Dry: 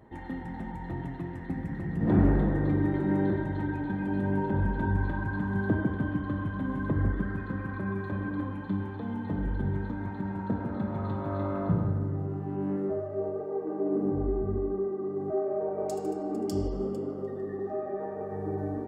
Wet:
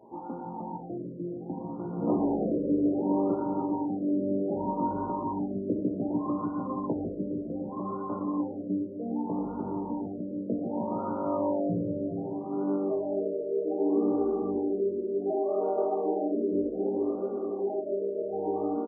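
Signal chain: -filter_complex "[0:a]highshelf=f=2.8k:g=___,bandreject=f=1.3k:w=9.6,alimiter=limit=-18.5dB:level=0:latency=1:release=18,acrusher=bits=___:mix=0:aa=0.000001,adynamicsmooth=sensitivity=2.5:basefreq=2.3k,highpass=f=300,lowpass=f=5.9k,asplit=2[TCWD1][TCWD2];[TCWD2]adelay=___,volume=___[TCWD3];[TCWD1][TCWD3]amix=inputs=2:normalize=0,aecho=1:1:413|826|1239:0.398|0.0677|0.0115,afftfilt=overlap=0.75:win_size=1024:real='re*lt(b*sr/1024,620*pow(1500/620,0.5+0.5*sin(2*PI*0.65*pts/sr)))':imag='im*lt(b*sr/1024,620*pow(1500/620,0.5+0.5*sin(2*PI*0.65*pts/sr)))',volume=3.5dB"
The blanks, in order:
11, 10, 17, -4dB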